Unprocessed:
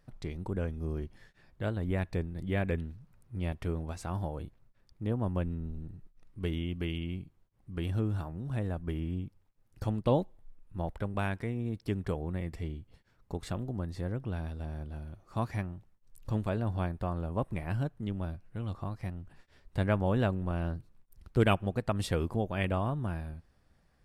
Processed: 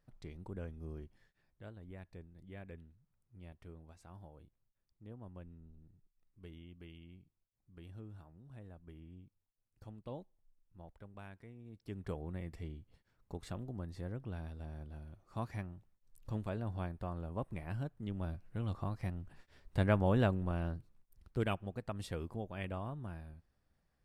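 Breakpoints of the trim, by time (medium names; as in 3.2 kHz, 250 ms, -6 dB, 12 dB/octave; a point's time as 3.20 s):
0.93 s -10.5 dB
1.81 s -19 dB
11.65 s -19 dB
12.10 s -7.5 dB
17.95 s -7.5 dB
18.41 s -1.5 dB
20.23 s -1.5 dB
21.59 s -10.5 dB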